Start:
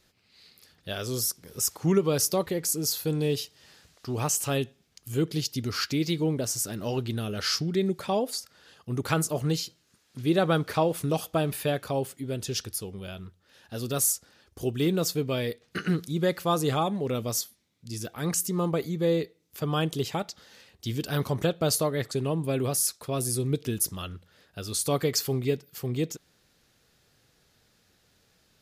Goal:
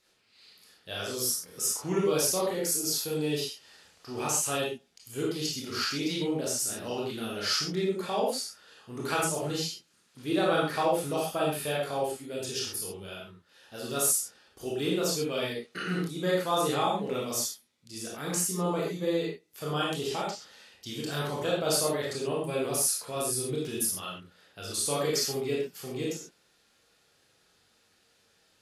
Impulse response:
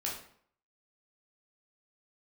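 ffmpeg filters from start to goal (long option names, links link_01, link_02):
-filter_complex "[0:a]lowshelf=frequency=210:gain=-12[link_01];[1:a]atrim=start_sample=2205,atrim=end_sample=3528,asetrate=24696,aresample=44100[link_02];[link_01][link_02]afir=irnorm=-1:irlink=0,volume=-5.5dB"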